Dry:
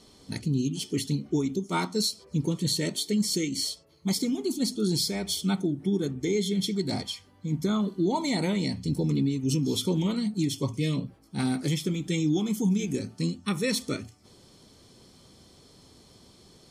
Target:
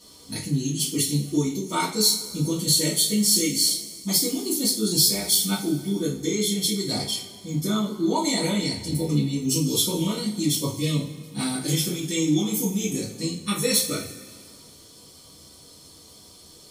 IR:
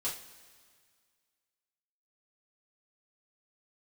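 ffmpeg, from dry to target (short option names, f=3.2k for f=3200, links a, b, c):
-filter_complex "[0:a]aeval=exprs='0.178*(cos(1*acos(clip(val(0)/0.178,-1,1)))-cos(1*PI/2))+0.00158*(cos(5*acos(clip(val(0)/0.178,-1,1)))-cos(5*PI/2))':c=same,aemphasis=mode=production:type=50fm[a];[1:a]atrim=start_sample=2205[b];[a][b]afir=irnorm=-1:irlink=0"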